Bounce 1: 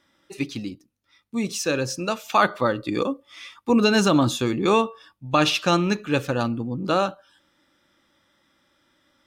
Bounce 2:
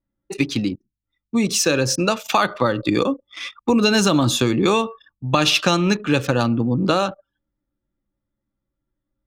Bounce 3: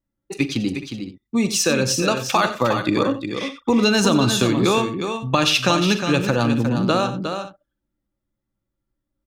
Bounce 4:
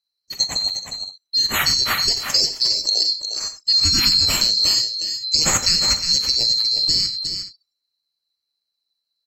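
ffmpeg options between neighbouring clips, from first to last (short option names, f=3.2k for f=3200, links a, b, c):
-filter_complex "[0:a]asplit=2[a][b];[b]acompressor=threshold=-25dB:ratio=6,volume=3dB[c];[a][c]amix=inputs=2:normalize=0,anlmdn=6.31,acrossover=split=120|3000[d][e][f];[e]acompressor=threshold=-18dB:ratio=3[g];[d][g][f]amix=inputs=3:normalize=0,volume=2.5dB"
-af "aecho=1:1:43|91|359|422:0.168|0.211|0.422|0.15,volume=-1dB"
-af "afftfilt=real='real(if(lt(b,736),b+184*(1-2*mod(floor(b/184),2)),b),0)':imag='imag(if(lt(b,736),b+184*(1-2*mod(floor(b/184),2)),b),0)':win_size=2048:overlap=0.75" -ar 44100 -c:a aac -b:a 48k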